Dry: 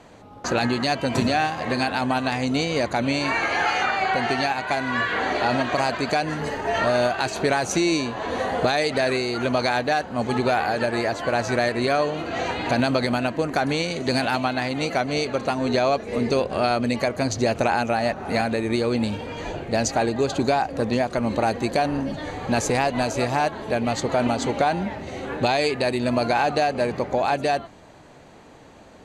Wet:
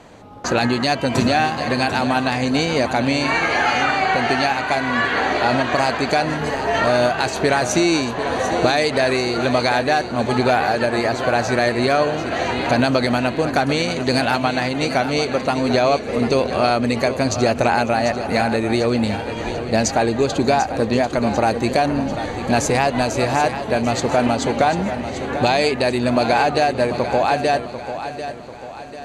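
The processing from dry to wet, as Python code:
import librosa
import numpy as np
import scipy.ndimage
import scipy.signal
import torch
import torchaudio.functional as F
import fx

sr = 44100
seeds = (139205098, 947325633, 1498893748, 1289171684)

y = fx.echo_feedback(x, sr, ms=743, feedback_pct=45, wet_db=-10.5)
y = y * 10.0 ** (4.0 / 20.0)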